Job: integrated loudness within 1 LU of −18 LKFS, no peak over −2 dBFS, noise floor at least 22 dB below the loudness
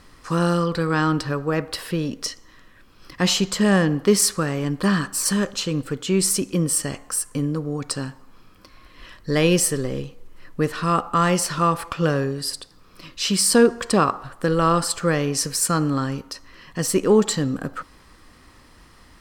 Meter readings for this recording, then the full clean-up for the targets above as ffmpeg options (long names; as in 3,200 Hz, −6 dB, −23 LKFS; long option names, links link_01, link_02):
integrated loudness −21.5 LKFS; sample peak −4.0 dBFS; target loudness −18.0 LKFS
→ -af "volume=3.5dB,alimiter=limit=-2dB:level=0:latency=1"